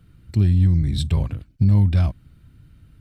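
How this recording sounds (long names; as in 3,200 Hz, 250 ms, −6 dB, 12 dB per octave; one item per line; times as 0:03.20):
background noise floor −54 dBFS
spectral slope −8.5 dB per octave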